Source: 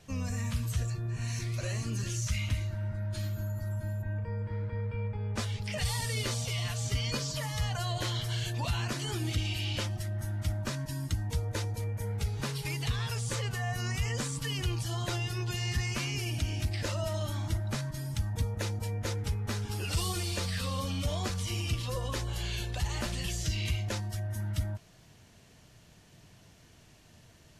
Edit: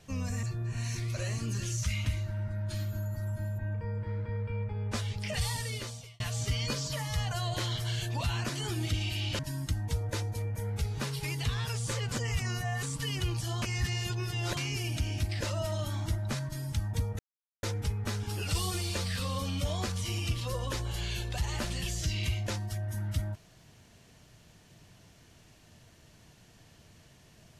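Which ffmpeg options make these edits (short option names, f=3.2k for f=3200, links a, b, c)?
-filter_complex "[0:a]asplit=10[a][b][c][d][e][f][g][h][i][j];[a]atrim=end=0.432[k];[b]atrim=start=0.868:end=6.64,asetpts=PTS-STARTPTS,afade=t=out:st=5.022:d=0.75[l];[c]atrim=start=6.64:end=9.832,asetpts=PTS-STARTPTS,afade=t=in:d=0.004:c=hsin[m];[d]atrim=start=10.808:end=13.542[n];[e]atrim=start=13.538:end=14.252,asetpts=PTS-STARTPTS,areverse[o];[f]atrim=start=14.248:end=15.042[p];[g]atrim=start=15.038:end=15.992,asetpts=PTS-STARTPTS,areverse[q];[h]atrim=start=15.988:end=18.61,asetpts=PTS-STARTPTS,afade=t=out:st=2.618:d=0.004:c=hsin[r];[i]atrim=start=18.61:end=19.05,asetpts=PTS-STARTPTS,volume=0[s];[j]atrim=start=19.05,asetpts=PTS-STARTPTS,afade=t=in:d=0.004:c=hsin[t];[l][m]concat=n=2:v=0:a=1[u];[k][u]acrossfade=d=0.004:c1=hsin:c2=hsin[v];[v][n]acrossfade=d=0.004:c1=hsin:c2=hsin[w];[w][o]acrossfade=d=0.004:c1=hsin:c2=hsin[x];[x][p]acrossfade=d=0.004:c1=hsin:c2=hsin[y];[y][q]acrossfade=d=0.004:c1=hsin:c2=hsin[z];[r][s][t]concat=n=3:v=0:a=1[aa];[z][aa]acrossfade=d=0.004:c1=hsin:c2=hsin"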